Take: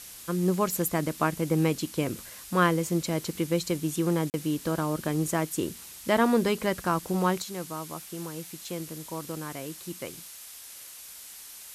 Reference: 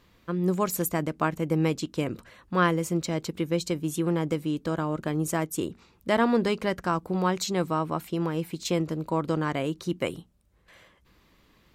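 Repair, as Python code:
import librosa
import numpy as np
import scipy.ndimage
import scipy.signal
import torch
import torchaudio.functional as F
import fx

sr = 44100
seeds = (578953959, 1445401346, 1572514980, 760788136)

y = fx.fix_interpolate(x, sr, at_s=(4.3,), length_ms=39.0)
y = fx.noise_reduce(y, sr, print_start_s=10.48, print_end_s=10.98, reduce_db=16.0)
y = fx.gain(y, sr, db=fx.steps((0.0, 0.0), (7.42, 9.5)))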